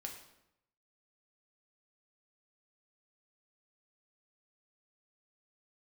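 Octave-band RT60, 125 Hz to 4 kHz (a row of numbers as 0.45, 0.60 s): 0.95, 0.90, 0.85, 0.80, 0.75, 0.65 s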